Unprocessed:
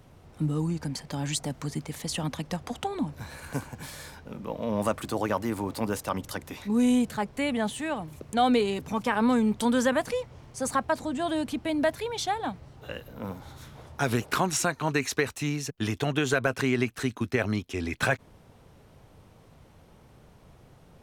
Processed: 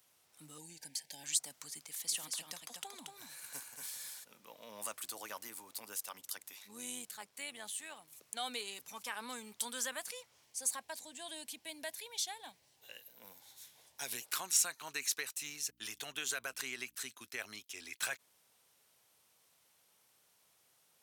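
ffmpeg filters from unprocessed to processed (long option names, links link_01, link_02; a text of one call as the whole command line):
ffmpeg -i in.wav -filter_complex "[0:a]asettb=1/sr,asplit=3[link_01][link_02][link_03];[link_01]atrim=end=0.584[link_04];[link_02]atrim=start=0.58:end=1.24,asetpts=PTS-STARTPTS,afade=type=in:duration=0.004:curve=qsin,afade=type=out:start_time=0.656:duration=0.004:curve=qsin,asuperstop=centerf=1200:order=20:qfactor=2.1[link_05];[link_03]atrim=start=1.236[link_06];[link_04][link_05]acrossfade=duration=0.004:curve1=hsin:curve2=qsin[link_07];[link_07][link_06]acrossfade=duration=0.004:curve1=qsin:curve2=hsin,asplit=3[link_08][link_09][link_10];[link_08]afade=type=out:start_time=2.04:duration=0.02[link_11];[link_09]aecho=1:1:231:0.562,afade=type=in:start_time=2.04:duration=0.02,afade=type=out:start_time=4.23:duration=0.02[link_12];[link_10]afade=type=in:start_time=4.23:duration=0.02[link_13];[link_11][link_12][link_13]amix=inputs=3:normalize=0,asplit=3[link_14][link_15][link_16];[link_14]afade=type=out:start_time=5.47:duration=0.02[link_17];[link_15]tremolo=f=97:d=0.462,afade=type=in:start_time=5.47:duration=0.02,afade=type=out:start_time=8.1:duration=0.02[link_18];[link_16]afade=type=in:start_time=8.1:duration=0.02[link_19];[link_17][link_18][link_19]amix=inputs=3:normalize=0,asettb=1/sr,asplit=3[link_20][link_21][link_22];[link_20]atrim=end=10.444[link_23];[link_21]atrim=start=10.44:end=14.25,asetpts=PTS-STARTPTS,afade=type=in:duration=0.004:curve=qsin,afade=type=out:start_time=3.806:duration=0.004:curve=qsin,equalizer=frequency=1300:width=4.8:gain=-12.5[link_24];[link_22]atrim=start=14.246[link_25];[link_23][link_24]acrossfade=duration=0.004:curve1=hsin:curve2=qsin[link_26];[link_26][link_25]acrossfade=duration=0.004:curve1=qsin:curve2=hsin,asettb=1/sr,asplit=3[link_27][link_28][link_29];[link_27]atrim=end=15.434[link_30];[link_28]atrim=start=15.43:end=16.95,asetpts=PTS-STARTPTS,afade=type=in:duration=0.004:curve=qsin,afade=type=out:start_time=1.516:duration=0.004:curve=qsin,aeval=exprs='val(0)+0.00891*(sin(2*PI*60*n/s)+sin(2*PI*2*60*n/s)/2+sin(2*PI*3*60*n/s)/3+sin(2*PI*4*60*n/s)/4+sin(2*PI*5*60*n/s)/5)':channel_layout=same[link_31];[link_29]atrim=start=16.946[link_32];[link_30][link_31]acrossfade=duration=0.004:curve1=hsin:curve2=qsin[link_33];[link_33][link_32]acrossfade=duration=0.004:curve1=qsin:curve2=hsin,aderivative" out.wav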